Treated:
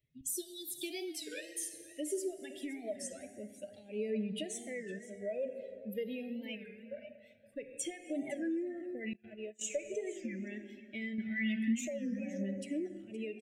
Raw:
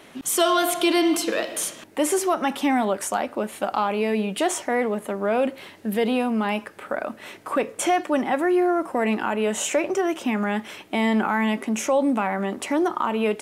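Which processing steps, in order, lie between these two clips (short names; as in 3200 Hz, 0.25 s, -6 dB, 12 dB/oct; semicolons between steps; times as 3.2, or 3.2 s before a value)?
per-bin expansion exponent 2; plate-style reverb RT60 2.1 s, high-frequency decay 0.65×, DRR 8.5 dB; compressor 16:1, threshold -27 dBFS, peak gain reduction 10.5 dB; 11.18–11.89 graphic EQ 250/2000/4000/8000 Hz +8/+7/+10/-3 dB; echo 0.518 s -17 dB; phaser 0.24 Hz, delay 2.8 ms, feedback 39%; 0.3–0.83 spectral gain 580–3400 Hz -20 dB; 1.2–1.74 bell 150 Hz -7.5 dB 2.8 oct; 9.13–9.7 gate -31 dBFS, range -28 dB; elliptic band-stop 600–1900 Hz, stop band 50 dB; record warp 33 1/3 rpm, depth 160 cents; gain -7 dB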